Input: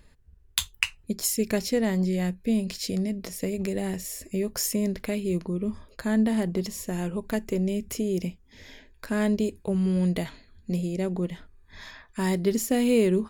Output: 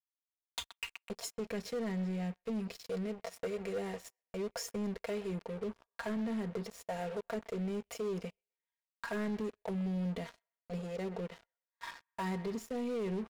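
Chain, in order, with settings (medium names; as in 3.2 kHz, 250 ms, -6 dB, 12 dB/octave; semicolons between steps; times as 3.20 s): auto-wah 320–1100 Hz, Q 3.2, down, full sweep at -22 dBFS; gate -54 dBFS, range -24 dB; comb 4.3 ms, depth 69%; peak limiter -24.5 dBFS, peak gain reduction 9 dB; amplifier tone stack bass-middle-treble 10-0-10; feedback echo behind a band-pass 127 ms, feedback 39%, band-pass 1.5 kHz, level -14.5 dB; waveshaping leveller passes 5; trim +1 dB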